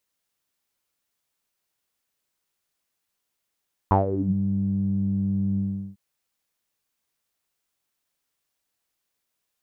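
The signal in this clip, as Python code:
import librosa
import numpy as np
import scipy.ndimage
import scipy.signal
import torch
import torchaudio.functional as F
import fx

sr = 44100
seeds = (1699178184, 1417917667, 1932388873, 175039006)

y = fx.sub_voice(sr, note=43, wave='saw', cutoff_hz=180.0, q=8.7, env_oct=2.5, env_s=0.4, attack_ms=1.5, decay_s=0.14, sustain_db=-12.0, release_s=0.38, note_s=1.67, slope=12)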